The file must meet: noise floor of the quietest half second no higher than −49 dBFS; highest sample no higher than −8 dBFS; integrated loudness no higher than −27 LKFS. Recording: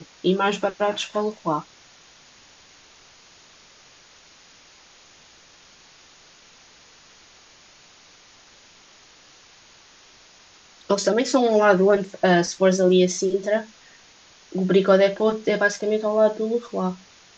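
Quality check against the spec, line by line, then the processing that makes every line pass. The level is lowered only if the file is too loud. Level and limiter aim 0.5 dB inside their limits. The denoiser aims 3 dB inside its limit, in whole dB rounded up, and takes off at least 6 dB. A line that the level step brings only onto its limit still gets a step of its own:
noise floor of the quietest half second −52 dBFS: in spec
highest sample −3.5 dBFS: out of spec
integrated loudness −21.0 LKFS: out of spec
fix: level −6.5 dB

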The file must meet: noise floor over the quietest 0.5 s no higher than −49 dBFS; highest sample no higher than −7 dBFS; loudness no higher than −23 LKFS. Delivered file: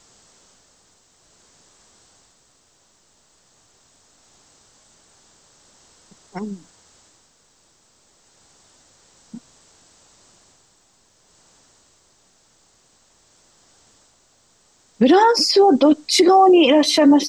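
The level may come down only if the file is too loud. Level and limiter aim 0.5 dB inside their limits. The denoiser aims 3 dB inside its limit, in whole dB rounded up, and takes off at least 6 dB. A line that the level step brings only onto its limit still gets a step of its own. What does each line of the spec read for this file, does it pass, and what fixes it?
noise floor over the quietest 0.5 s −59 dBFS: in spec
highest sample −5.5 dBFS: out of spec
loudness −14.0 LKFS: out of spec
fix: level −9.5 dB

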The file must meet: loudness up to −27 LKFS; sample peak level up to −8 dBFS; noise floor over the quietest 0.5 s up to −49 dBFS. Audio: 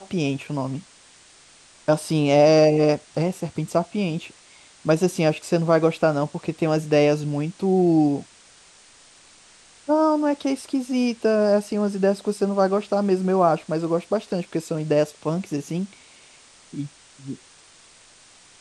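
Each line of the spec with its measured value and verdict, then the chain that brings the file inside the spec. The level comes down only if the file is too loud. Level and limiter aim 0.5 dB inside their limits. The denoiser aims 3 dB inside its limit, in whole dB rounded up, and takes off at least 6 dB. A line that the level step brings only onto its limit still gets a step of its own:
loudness −22.0 LKFS: out of spec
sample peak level −5.5 dBFS: out of spec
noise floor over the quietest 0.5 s −51 dBFS: in spec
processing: level −5.5 dB

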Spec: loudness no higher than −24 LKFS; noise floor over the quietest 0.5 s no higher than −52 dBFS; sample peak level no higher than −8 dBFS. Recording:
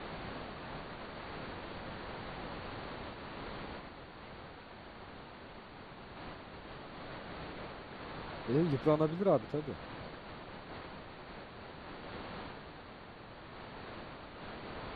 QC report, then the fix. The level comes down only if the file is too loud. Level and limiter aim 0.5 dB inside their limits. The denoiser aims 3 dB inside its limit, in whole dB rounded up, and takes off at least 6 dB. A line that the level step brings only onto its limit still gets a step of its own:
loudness −41.0 LKFS: in spec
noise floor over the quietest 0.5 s −51 dBFS: out of spec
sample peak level −15.5 dBFS: in spec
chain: broadband denoise 6 dB, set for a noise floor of −51 dBFS

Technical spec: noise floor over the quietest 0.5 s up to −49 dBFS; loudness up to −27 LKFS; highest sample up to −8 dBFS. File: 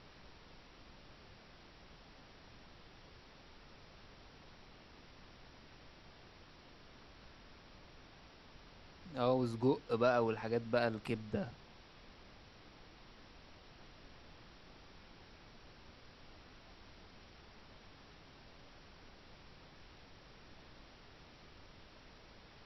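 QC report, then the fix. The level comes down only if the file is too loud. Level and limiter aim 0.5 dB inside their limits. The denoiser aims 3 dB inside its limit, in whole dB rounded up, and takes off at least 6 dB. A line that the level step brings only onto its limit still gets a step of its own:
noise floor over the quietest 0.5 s −59 dBFS: in spec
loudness −36.0 LKFS: in spec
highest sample −18.5 dBFS: in spec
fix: no processing needed

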